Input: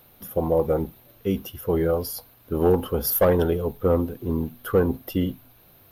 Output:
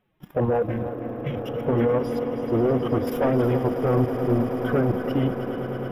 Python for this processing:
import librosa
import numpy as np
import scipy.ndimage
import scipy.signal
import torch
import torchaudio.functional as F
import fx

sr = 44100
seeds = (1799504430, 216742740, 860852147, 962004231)

p1 = fx.spec_quant(x, sr, step_db=15)
p2 = fx.pitch_keep_formants(p1, sr, semitones=6.5)
p3 = fx.level_steps(p2, sr, step_db=13)
p4 = fx.leveller(p3, sr, passes=2)
p5 = scipy.signal.savgol_filter(p4, 25, 4, mode='constant')
p6 = p5 + fx.echo_swell(p5, sr, ms=107, loudest=8, wet_db=-15.0, dry=0)
p7 = fx.spec_repair(p6, sr, seeds[0], start_s=0.7, length_s=0.86, low_hz=220.0, high_hz=1500.0, source='both')
y = p7 + 10.0 ** (-11.5 / 20.0) * np.pad(p7, (int(317 * sr / 1000.0), 0))[:len(p7)]